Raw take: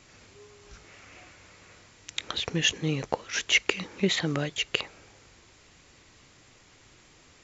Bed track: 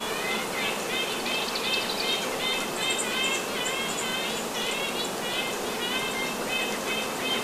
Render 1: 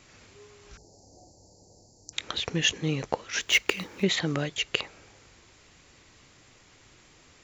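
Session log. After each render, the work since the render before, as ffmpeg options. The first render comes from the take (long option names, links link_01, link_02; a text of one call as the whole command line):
ffmpeg -i in.wav -filter_complex "[0:a]asettb=1/sr,asplit=3[link_01][link_02][link_03];[link_01]atrim=end=0.774[link_04];[link_02]atrim=start=0.77:end=2.13,asetpts=PTS-STARTPTS,afade=type=in:duration=0.004:curve=qsin,afade=type=out:start_time=1.356:duration=0.004:curve=qsin,asuperstop=centerf=2000:order=20:qfactor=0.56[link_05];[link_03]atrim=start=2.126[link_06];[link_04][link_05]acrossfade=duration=0.004:curve1=hsin:curve2=qsin[link_07];[link_07][link_06]acrossfade=duration=0.004:curve1=qsin:curve2=hsin,asettb=1/sr,asplit=3[link_08][link_09][link_10];[link_08]atrim=end=3.414[link_11];[link_09]atrim=start=3.41:end=4.03,asetpts=PTS-STARTPTS,afade=type=in:duration=0.004:curve=qsin,afade=type=out:start_time=0.616:duration=0.004:curve=qsin,acrusher=bits=5:mode=log:mix=0:aa=0.000001[link_12];[link_10]atrim=start=4.026[link_13];[link_11][link_12]acrossfade=duration=0.004:curve1=hsin:curve2=qsin[link_14];[link_14][link_13]acrossfade=duration=0.004:curve1=qsin:curve2=hsin" out.wav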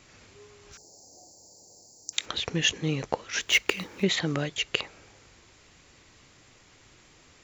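ffmpeg -i in.wav -filter_complex "[0:a]asettb=1/sr,asplit=3[link_01][link_02][link_03];[link_01]atrim=end=0.724[link_04];[link_02]atrim=start=0.72:end=2.26,asetpts=PTS-STARTPTS,afade=type=in:duration=0.004:curve=qsin,afade=type=out:start_time=1.536:duration=0.004:curve=qsin,aemphasis=mode=production:type=bsi[link_05];[link_03]atrim=start=2.256[link_06];[link_04][link_05]acrossfade=duration=0.004:curve1=hsin:curve2=qsin[link_07];[link_07][link_06]acrossfade=duration=0.004:curve1=qsin:curve2=hsin" out.wav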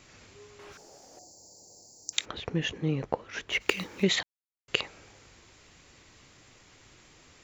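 ffmpeg -i in.wav -filter_complex "[0:a]asettb=1/sr,asplit=3[link_01][link_02][link_03];[link_01]atrim=end=0.594[link_04];[link_02]atrim=start=0.59:end=1.19,asetpts=PTS-STARTPTS,afade=type=in:duration=0.004:curve=qsin,afade=type=out:start_time=0.596:duration=0.004:curve=qsin,asplit=2[link_05][link_06];[link_06]highpass=frequency=720:poles=1,volume=24dB,asoftclip=type=tanh:threshold=-36dB[link_07];[link_05][link_07]amix=inputs=2:normalize=0,lowpass=frequency=1200:poles=1,volume=-6dB[link_08];[link_03]atrim=start=1.186[link_09];[link_04][link_08]acrossfade=duration=0.004:curve1=hsin:curve2=qsin[link_10];[link_10][link_09]acrossfade=duration=0.004:curve1=qsin:curve2=hsin,asplit=3[link_11][link_12][link_13];[link_11]afade=type=out:start_time=2.24:duration=0.02[link_14];[link_12]lowpass=frequency=1100:poles=1,afade=type=in:start_time=2.24:duration=0.02,afade=type=out:start_time=3.6:duration=0.02[link_15];[link_13]afade=type=in:start_time=3.6:duration=0.02[link_16];[link_14][link_15][link_16]amix=inputs=3:normalize=0,asplit=3[link_17][link_18][link_19];[link_17]atrim=end=4.23,asetpts=PTS-STARTPTS,afade=type=out:start_time=4.226:duration=0.004:curve=hsin[link_20];[link_18]atrim=start=4.23:end=4.68,asetpts=PTS-STARTPTS,volume=0[link_21];[link_19]atrim=start=4.68,asetpts=PTS-STARTPTS,afade=type=in:duration=0.004:curve=hsin[link_22];[link_20][link_21][link_22]concat=n=3:v=0:a=1" out.wav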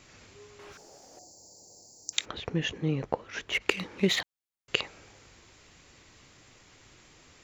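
ffmpeg -i in.wav -filter_complex "[0:a]asettb=1/sr,asplit=3[link_01][link_02][link_03];[link_01]atrim=end=3.544[link_04];[link_02]atrim=start=3.54:end=4.21,asetpts=PTS-STARTPTS,afade=type=in:duration=0.004:curve=qsin,afade=type=out:start_time=0.666:duration=0.004:curve=qsin,adynamicsmooth=sensitivity=7.5:basefreq=5200[link_05];[link_03]atrim=start=4.206[link_06];[link_04][link_05]acrossfade=duration=0.004:curve1=hsin:curve2=qsin[link_07];[link_07][link_06]acrossfade=duration=0.004:curve1=qsin:curve2=hsin" out.wav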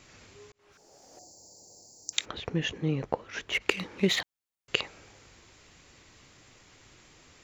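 ffmpeg -i in.wav -filter_complex "[0:a]asplit=2[link_01][link_02];[link_01]atrim=end=0.52,asetpts=PTS-STARTPTS,afade=type=out:start_time=0.516:duration=0.004:curve=hsin[link_03];[link_02]atrim=start=0.52,asetpts=PTS-STARTPTS,afade=type=in:duration=0.69[link_04];[link_03][link_04]concat=n=2:v=0:a=1" out.wav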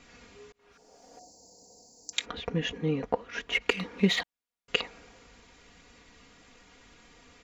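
ffmpeg -i in.wav -af "lowpass=frequency=4000:poles=1,aecho=1:1:4.2:0.71" out.wav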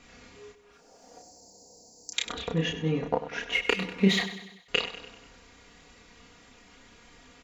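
ffmpeg -i in.wav -filter_complex "[0:a]asplit=2[link_01][link_02];[link_02]adelay=31,volume=-3.5dB[link_03];[link_01][link_03]amix=inputs=2:normalize=0,aecho=1:1:97|194|291|388|485:0.237|0.126|0.0666|0.0353|0.0187" out.wav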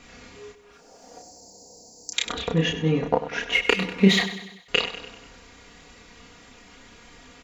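ffmpeg -i in.wav -af "volume=5.5dB,alimiter=limit=-3dB:level=0:latency=1" out.wav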